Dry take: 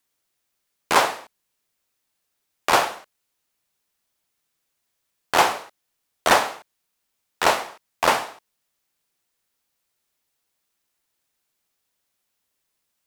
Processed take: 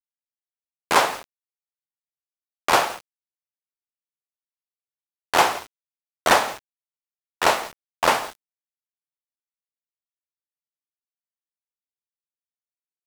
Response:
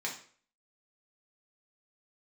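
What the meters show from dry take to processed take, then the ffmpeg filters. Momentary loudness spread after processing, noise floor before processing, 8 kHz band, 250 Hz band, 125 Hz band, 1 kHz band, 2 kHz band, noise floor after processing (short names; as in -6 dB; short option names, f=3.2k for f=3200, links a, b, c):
17 LU, -77 dBFS, 0.0 dB, 0.0 dB, 0.0 dB, 0.0 dB, 0.0 dB, under -85 dBFS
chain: -af "agate=range=-33dB:threshold=-34dB:ratio=3:detection=peak,aecho=1:1:168:0.1,aeval=exprs='val(0)*gte(abs(val(0)),0.0188)':c=same"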